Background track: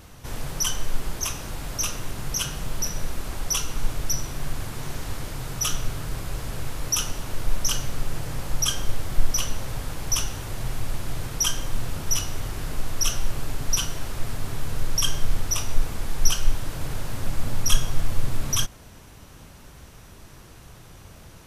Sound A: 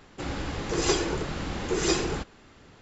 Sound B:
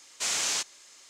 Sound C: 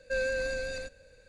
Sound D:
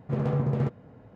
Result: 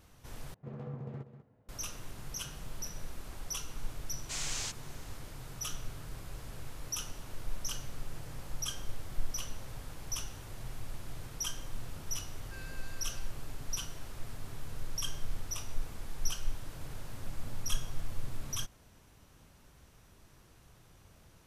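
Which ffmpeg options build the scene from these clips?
-filter_complex "[0:a]volume=0.211[s0];[4:a]aecho=1:1:193:0.266[s1];[3:a]highpass=1500[s2];[s0]asplit=2[s3][s4];[s3]atrim=end=0.544[s5];[s1]atrim=end=1.15,asetpts=PTS-STARTPTS,volume=0.15[s6];[s4]atrim=start=1.686[s7];[2:a]atrim=end=1.09,asetpts=PTS-STARTPTS,volume=0.335,afade=t=in:d=0.004:c=hsin,afade=t=out:st=1.086:d=0.004:c=hsin,adelay=180369S[s8];[s2]atrim=end=1.28,asetpts=PTS-STARTPTS,volume=0.2,afade=t=in:d=0.004:c=hsin,afade=t=out:st=1.276:d=0.004:c=hsin,adelay=12410[s9];[s5][s6]acrossfade=d=0.004:c1=hsin:c2=hsin[s10];[s10][s7]acrossfade=d=0.004:c1=hsin:c2=hsin[s11];[s11][s8][s9]amix=inputs=3:normalize=0"

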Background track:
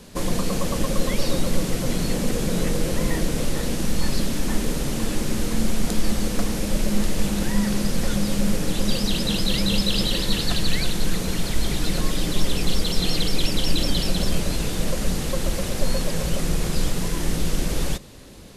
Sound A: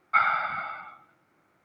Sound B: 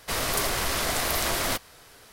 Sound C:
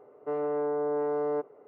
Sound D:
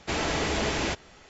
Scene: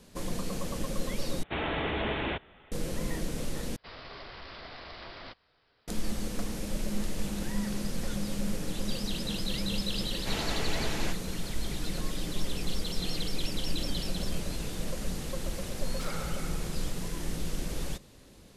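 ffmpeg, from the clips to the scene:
-filter_complex "[4:a]asplit=2[s0][s1];[0:a]volume=0.299[s2];[s0]aresample=8000,aresample=44100[s3];[2:a]aresample=11025,aresample=44100[s4];[1:a]aeval=exprs='0.0794*(abs(mod(val(0)/0.0794+3,4)-2)-1)':c=same[s5];[s2]asplit=3[s6][s7][s8];[s6]atrim=end=1.434[s9];[s3]atrim=end=1.29,asetpts=PTS-STARTPTS,volume=0.668[s10];[s7]atrim=start=2.716:end=3.764[s11];[s4]atrim=end=2.12,asetpts=PTS-STARTPTS,volume=0.141[s12];[s8]atrim=start=5.876[s13];[s1]atrim=end=1.29,asetpts=PTS-STARTPTS,volume=0.422,afade=t=in:d=0.004:c=hsin,afade=t=out:st=1.286:d=0.004:c=hsin,adelay=448938S[s14];[s5]atrim=end=1.64,asetpts=PTS-STARTPTS,volume=0.178,afade=t=in:d=0.004:c=hsin,afade=t=out:st=1.636:d=0.004:c=hsin,adelay=15860[s15];[s9][s10]acrossfade=d=0.004:c1=hsin:c2=hsin[s16];[s16][s11]acrossfade=d=0.004:c1=hsin:c2=hsin[s17];[s17][s12]acrossfade=d=0.004:c1=hsin:c2=hsin[s18];[s18][s13]acrossfade=d=0.004:c1=hsin:c2=hsin[s19];[s19][s14][s15]amix=inputs=3:normalize=0"

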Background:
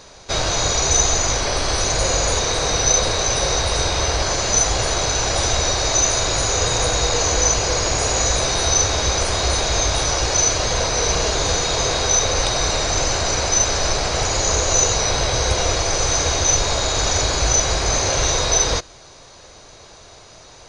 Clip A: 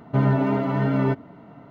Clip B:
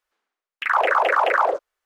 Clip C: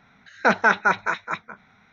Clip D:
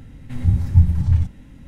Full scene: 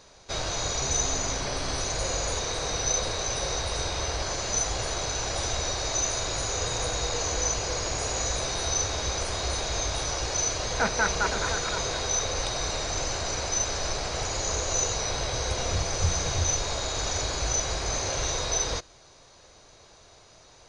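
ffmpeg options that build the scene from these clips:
-filter_complex "[0:a]volume=0.316[s0];[1:a]asoftclip=type=tanh:threshold=0.0501[s1];[3:a]aecho=1:1:516:0.355[s2];[s1]atrim=end=1.7,asetpts=PTS-STARTPTS,volume=0.224,afade=t=in:d=0.004:c=hsin,afade=t=out:st=1.696:d=0.004:c=hsin,adelay=670[s3];[s2]atrim=end=1.92,asetpts=PTS-STARTPTS,volume=0.376,afade=t=in:d=0.004:c=hsin,afade=t=out:st=1.916:d=0.004:c=hsin,adelay=10350[s4];[4:a]atrim=end=1.67,asetpts=PTS-STARTPTS,volume=0.178,afade=t=in:d=0.004:c=hsin,afade=t=out:st=1.666:d=0.004:c=hsin,adelay=15270[s5];[s0][s3][s4][s5]amix=inputs=4:normalize=0"

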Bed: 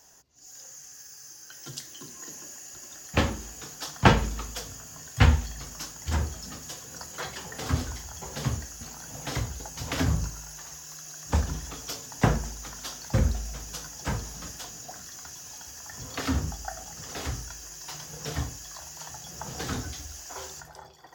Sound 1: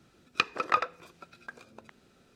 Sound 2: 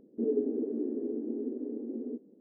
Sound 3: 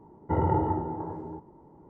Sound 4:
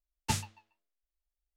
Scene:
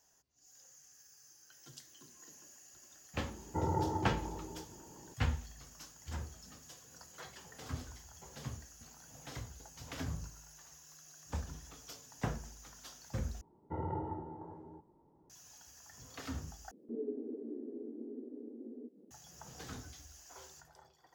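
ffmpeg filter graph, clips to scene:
-filter_complex "[3:a]asplit=2[s0][s1];[0:a]volume=0.188[s2];[s0]acompressor=mode=upward:threshold=0.0126:ratio=2.5:attack=3.2:release=140:knee=2.83:detection=peak[s3];[2:a]acompressor=mode=upward:threshold=0.0112:ratio=2.5:attack=3.2:release=140:knee=2.83:detection=peak[s4];[s2]asplit=3[s5][s6][s7];[s5]atrim=end=13.414[s8];[s1]atrim=end=1.89,asetpts=PTS-STARTPTS,volume=0.211[s9];[s6]atrim=start=15.296:end=16.714[s10];[s4]atrim=end=2.4,asetpts=PTS-STARTPTS,volume=0.299[s11];[s7]atrim=start=19.106[s12];[s3]atrim=end=1.89,asetpts=PTS-STARTPTS,volume=0.376,afade=t=in:d=0.004:c=hsin,afade=t=out:st=1.886:d=0.004:c=hsin,adelay=143325S[s13];[s8][s9]acrossfade=d=0.004:c1=hsin:c2=hsin[s14];[s14][s10]acrossfade=d=0.004:c1=hsin:c2=hsin[s15];[s15][s11]acrossfade=d=0.004:c1=hsin:c2=hsin[s16];[s16][s12]acrossfade=d=0.004:c1=hsin:c2=hsin[s17];[s17][s13]amix=inputs=2:normalize=0"

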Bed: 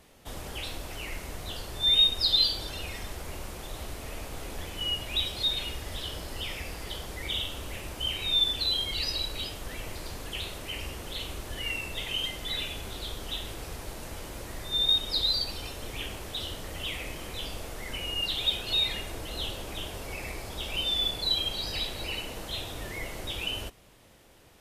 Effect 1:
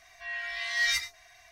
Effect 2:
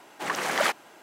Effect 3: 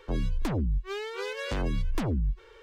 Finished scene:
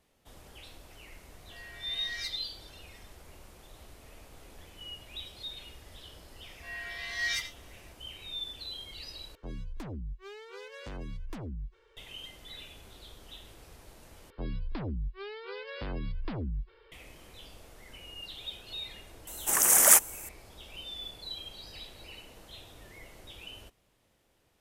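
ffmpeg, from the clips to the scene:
-filter_complex "[1:a]asplit=2[s0][s1];[3:a]asplit=2[s2][s3];[0:a]volume=0.211[s4];[s3]aresample=11025,aresample=44100[s5];[2:a]aexciter=amount=15:drive=6.9:freq=6400[s6];[s4]asplit=3[s7][s8][s9];[s7]atrim=end=9.354[s10];[s2]atrim=end=2.62,asetpts=PTS-STARTPTS,volume=0.266[s11];[s8]atrim=start=11.966:end=14.304[s12];[s5]atrim=end=2.62,asetpts=PTS-STARTPTS,volume=0.447[s13];[s9]atrim=start=16.916[s14];[s0]atrim=end=1.51,asetpts=PTS-STARTPTS,volume=0.224,afade=t=in:d=0.004:c=hsin,afade=t=out:st=1.506:d=0.004:c=hsin,adelay=1300[s15];[s1]atrim=end=1.51,asetpts=PTS-STARTPTS,volume=0.562,afade=t=in:d=0.004:c=hsin,afade=t=out:st=1.506:d=0.004:c=hsin,adelay=283122S[s16];[s6]atrim=end=1.02,asetpts=PTS-STARTPTS,volume=0.631,afade=t=in:d=0.004:c=hsin,afade=t=out:st=1.016:d=0.004:c=hsin,adelay=19270[s17];[s10][s11]acrossfade=d=0.004:c1=hsin:c2=hsin[s18];[s18][s12]acrossfade=d=0.004:c1=hsin:c2=hsin[s19];[s19][s13]acrossfade=d=0.004:c1=hsin:c2=hsin[s20];[s20][s14]acrossfade=d=0.004:c1=hsin:c2=hsin[s21];[s21][s15][s16][s17]amix=inputs=4:normalize=0"

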